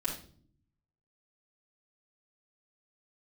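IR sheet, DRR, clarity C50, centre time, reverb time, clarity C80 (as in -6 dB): -8.0 dB, 6.0 dB, 23 ms, not exponential, 11.5 dB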